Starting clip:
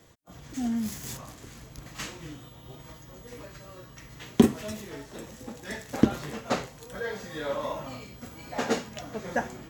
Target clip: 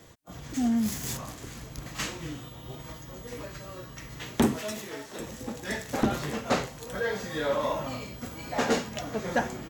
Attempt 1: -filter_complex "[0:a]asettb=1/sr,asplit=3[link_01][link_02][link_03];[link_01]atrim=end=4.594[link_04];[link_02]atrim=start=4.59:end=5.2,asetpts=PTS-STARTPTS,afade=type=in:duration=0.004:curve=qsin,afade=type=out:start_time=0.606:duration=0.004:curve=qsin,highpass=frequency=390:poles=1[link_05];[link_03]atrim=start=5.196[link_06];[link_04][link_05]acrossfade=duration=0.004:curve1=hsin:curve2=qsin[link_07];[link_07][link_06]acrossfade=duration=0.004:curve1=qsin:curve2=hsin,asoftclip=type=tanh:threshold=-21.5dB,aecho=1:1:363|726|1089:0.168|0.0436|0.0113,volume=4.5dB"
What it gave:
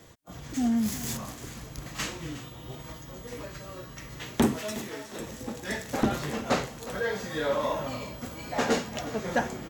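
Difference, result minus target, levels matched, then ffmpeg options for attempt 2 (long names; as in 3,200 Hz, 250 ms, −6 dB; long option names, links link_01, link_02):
echo-to-direct +10 dB
-filter_complex "[0:a]asettb=1/sr,asplit=3[link_01][link_02][link_03];[link_01]atrim=end=4.594[link_04];[link_02]atrim=start=4.59:end=5.2,asetpts=PTS-STARTPTS,afade=type=in:duration=0.004:curve=qsin,afade=type=out:start_time=0.606:duration=0.004:curve=qsin,highpass=frequency=390:poles=1[link_05];[link_03]atrim=start=5.196[link_06];[link_04][link_05]acrossfade=duration=0.004:curve1=hsin:curve2=qsin[link_07];[link_07][link_06]acrossfade=duration=0.004:curve1=qsin:curve2=hsin,asoftclip=type=tanh:threshold=-21.5dB,aecho=1:1:363|726:0.0531|0.0138,volume=4.5dB"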